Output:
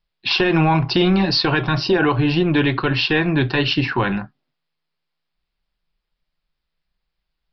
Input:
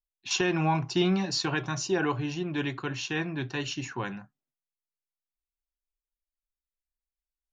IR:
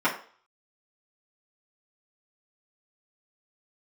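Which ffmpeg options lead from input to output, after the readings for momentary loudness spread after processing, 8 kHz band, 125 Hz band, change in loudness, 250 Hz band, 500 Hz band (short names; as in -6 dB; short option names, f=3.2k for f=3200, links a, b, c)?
4 LU, n/a, +12.0 dB, +11.5 dB, +11.5 dB, +11.0 dB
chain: -af "acompressor=threshold=-31dB:ratio=3,apsyclip=27dB,tremolo=f=160:d=0.333,aresample=11025,aresample=44100,volume=-8dB"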